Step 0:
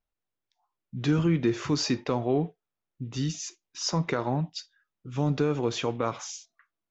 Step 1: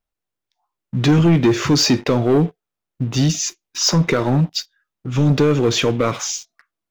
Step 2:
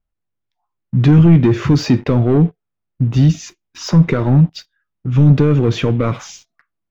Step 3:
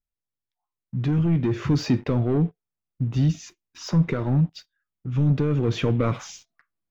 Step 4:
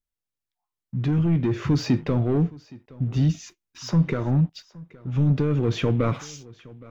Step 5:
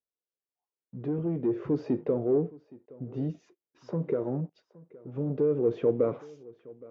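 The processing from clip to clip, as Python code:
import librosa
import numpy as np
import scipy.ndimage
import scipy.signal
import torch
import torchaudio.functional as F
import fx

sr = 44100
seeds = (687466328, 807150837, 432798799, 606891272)

y1 = fx.dynamic_eq(x, sr, hz=860.0, q=1.4, threshold_db=-42.0, ratio=4.0, max_db=-6)
y1 = fx.leveller(y1, sr, passes=2)
y1 = y1 * librosa.db_to_amplitude(7.0)
y2 = fx.bass_treble(y1, sr, bass_db=10, treble_db=-12)
y2 = y2 * librosa.db_to_amplitude(-2.0)
y3 = fx.rider(y2, sr, range_db=10, speed_s=0.5)
y3 = y3 * librosa.db_to_amplitude(-9.0)
y4 = y3 + 10.0 ** (-22.0 / 20.0) * np.pad(y3, (int(818 * sr / 1000.0), 0))[:len(y3)]
y5 = fx.bandpass_q(y4, sr, hz=450.0, q=2.7)
y5 = y5 * librosa.db_to_amplitude(3.5)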